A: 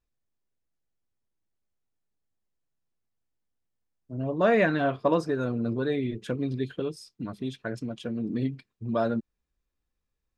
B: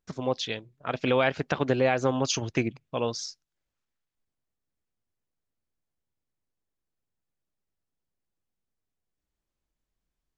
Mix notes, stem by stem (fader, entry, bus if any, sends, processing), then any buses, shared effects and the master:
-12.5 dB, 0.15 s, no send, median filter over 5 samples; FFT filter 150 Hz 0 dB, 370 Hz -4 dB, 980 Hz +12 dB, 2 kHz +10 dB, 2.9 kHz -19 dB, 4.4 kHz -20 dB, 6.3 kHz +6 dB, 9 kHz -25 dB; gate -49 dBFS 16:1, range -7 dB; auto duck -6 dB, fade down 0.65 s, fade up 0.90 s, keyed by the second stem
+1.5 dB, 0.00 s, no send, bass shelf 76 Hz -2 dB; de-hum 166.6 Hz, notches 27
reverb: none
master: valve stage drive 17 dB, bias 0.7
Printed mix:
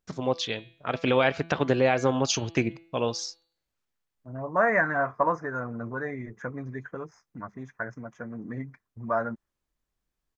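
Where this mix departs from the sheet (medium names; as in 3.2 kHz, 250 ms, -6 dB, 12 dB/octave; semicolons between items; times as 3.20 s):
stem A -12.5 dB -> -5.5 dB; master: missing valve stage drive 17 dB, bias 0.7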